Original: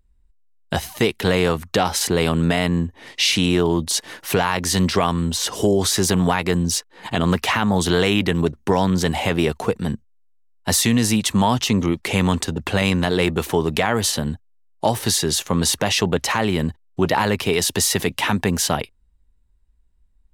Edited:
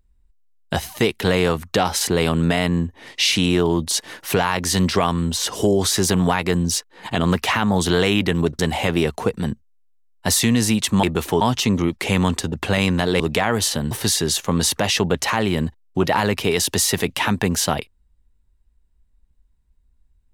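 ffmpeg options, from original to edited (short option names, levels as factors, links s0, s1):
-filter_complex "[0:a]asplit=6[s0][s1][s2][s3][s4][s5];[s0]atrim=end=8.592[s6];[s1]atrim=start=9.008:end=11.452[s7];[s2]atrim=start=13.238:end=13.622[s8];[s3]atrim=start=11.448:end=13.242[s9];[s4]atrim=start=13.618:end=14.332[s10];[s5]atrim=start=14.928[s11];[s6][s7]acrossfade=d=0.004:c1=hsin:c2=hsin[s12];[s12][s8]acrossfade=d=0.004:c1=hsin:c2=hsin[s13];[s13][s9]acrossfade=d=0.004:c1=hsin:c2=hsin[s14];[s14][s10]acrossfade=d=0.004:c1=hsin:c2=hsin[s15];[s15][s11]acrossfade=d=0.004:c1=hsin:c2=hsin"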